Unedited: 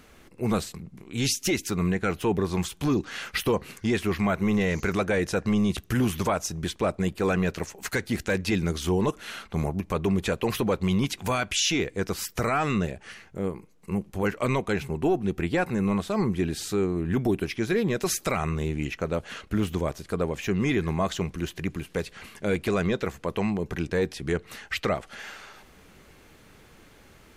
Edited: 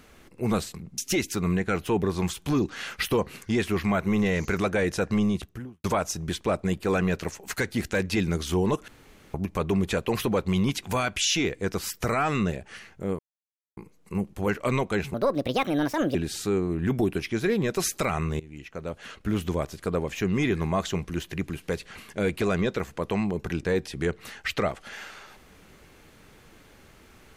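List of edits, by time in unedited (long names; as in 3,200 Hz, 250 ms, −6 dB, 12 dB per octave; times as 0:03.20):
0:00.98–0:01.33: remove
0:05.49–0:06.19: fade out and dull
0:09.23–0:09.69: fill with room tone
0:13.54: splice in silence 0.58 s
0:14.91–0:16.41: play speed 149%
0:18.66–0:19.73: fade in, from −20.5 dB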